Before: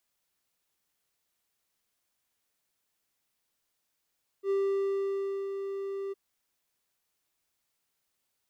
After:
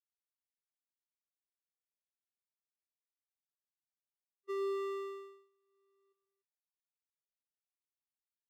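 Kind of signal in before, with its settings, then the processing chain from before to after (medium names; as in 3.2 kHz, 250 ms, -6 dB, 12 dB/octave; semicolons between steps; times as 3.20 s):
ADSR triangle 393 Hz, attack 71 ms, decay 984 ms, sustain -8 dB, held 1.69 s, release 21 ms -22.5 dBFS
loudspeakers at several distances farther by 42 m -7 dB, 99 m -8 dB; gate -30 dBFS, range -38 dB; high-pass 660 Hz 12 dB/octave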